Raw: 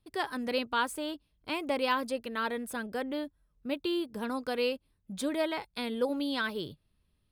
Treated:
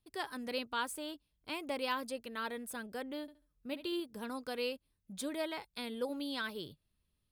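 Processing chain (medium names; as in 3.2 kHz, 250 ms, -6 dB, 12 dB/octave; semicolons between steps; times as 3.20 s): treble shelf 4 kHz +6.5 dB; 3.21–4.00 s: flutter echo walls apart 11.9 m, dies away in 0.33 s; trim -7.5 dB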